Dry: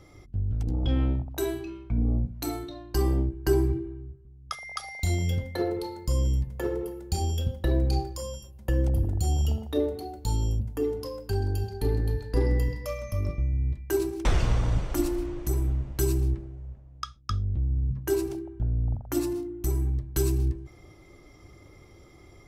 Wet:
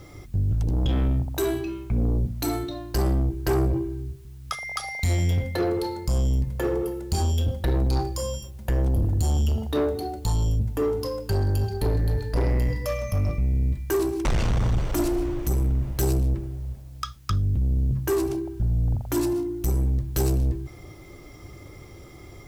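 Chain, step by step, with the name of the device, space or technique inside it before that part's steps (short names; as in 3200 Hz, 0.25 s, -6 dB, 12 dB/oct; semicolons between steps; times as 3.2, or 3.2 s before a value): open-reel tape (soft clip -26 dBFS, distortion -10 dB; bell 120 Hz +2.5 dB; white noise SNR 39 dB); gain +7 dB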